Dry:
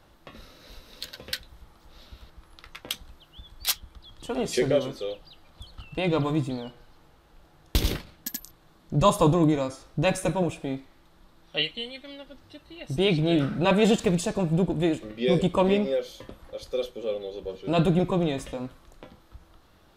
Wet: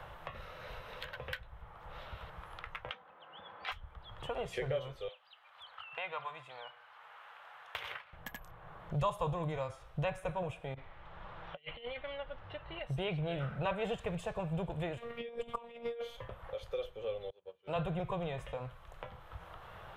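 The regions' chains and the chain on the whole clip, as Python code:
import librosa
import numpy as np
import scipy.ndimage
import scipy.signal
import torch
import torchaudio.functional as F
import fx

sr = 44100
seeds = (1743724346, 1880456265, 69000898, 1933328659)

y = fx.chain(x, sr, fx.highpass(hz=220.0, slope=24),
    fx.air_absorb(metres=210.0),
    fx.comb(ms=3.9, depth=0.37), at=(2.9, 3.72))
y = fx.chain(y, sr, fx.highpass(hz=1200.0, slope=12),
    fx.high_shelf(hz=6300.0, db=-10.0), at=(5.08, 8.13))
y = fx.chain(y, sr, fx.over_compress(threshold_db=-40.0, ratio=-0.5),
    fx.lowpass(hz=3400.0, slope=12), at=(10.74, 12.79))
y = fx.chain(y, sr, fx.highpass(hz=89.0, slope=12),
    fx.robotise(hz=234.0),
    fx.over_compress(threshold_db=-32.0, ratio=-0.5), at=(14.97, 16.17))
y = fx.chain(y, sr, fx.highpass(hz=190.0, slope=12),
    fx.upward_expand(threshold_db=-43.0, expansion=2.5), at=(17.3, 17.76))
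y = fx.curve_eq(y, sr, hz=(130.0, 280.0, 470.0, 1000.0, 3100.0, 4500.0, 9400.0, 14000.0), db=(0, -23, -4, 0, -4, -18, -15, -13))
y = fx.band_squash(y, sr, depth_pct=70)
y = y * 10.0 ** (-5.0 / 20.0)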